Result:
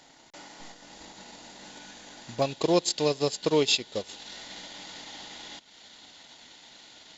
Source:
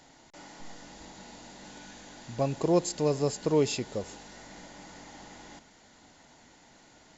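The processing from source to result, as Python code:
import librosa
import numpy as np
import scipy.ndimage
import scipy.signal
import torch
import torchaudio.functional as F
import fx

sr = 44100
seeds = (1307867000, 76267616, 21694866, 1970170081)

y = fx.peak_eq(x, sr, hz=3600.0, db=fx.steps((0.0, 4.5), (2.42, 14.5)), octaves=1.1)
y = fx.transient(y, sr, attack_db=3, sustain_db=-10)
y = fx.low_shelf(y, sr, hz=180.0, db=-8.0)
y = F.gain(torch.from_numpy(y), 1.0).numpy()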